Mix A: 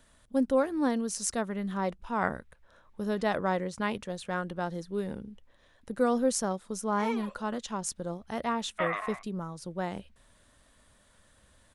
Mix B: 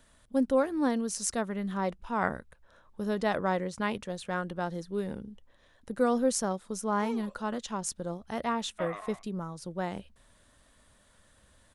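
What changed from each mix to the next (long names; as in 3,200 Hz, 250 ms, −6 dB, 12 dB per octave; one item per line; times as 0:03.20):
background: add parametric band 2,000 Hz −11.5 dB 2.2 octaves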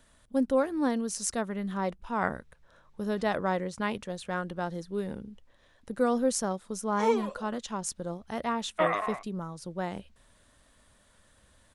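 background +11.5 dB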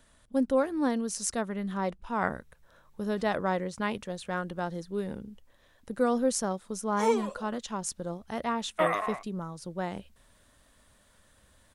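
background: remove low-pass filter 5,400 Hz 12 dB per octave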